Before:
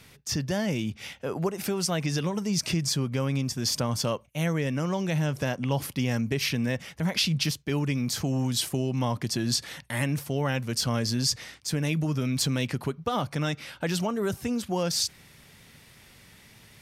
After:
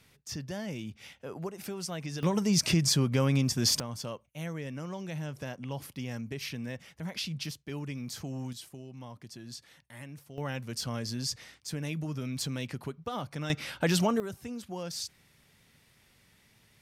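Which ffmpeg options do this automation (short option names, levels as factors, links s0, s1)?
-af "asetnsamples=n=441:p=0,asendcmd='2.23 volume volume 1.5dB;3.8 volume volume -10.5dB;8.53 volume volume -18dB;10.38 volume volume -8dB;13.5 volume volume 2dB;14.2 volume volume -10.5dB',volume=0.335"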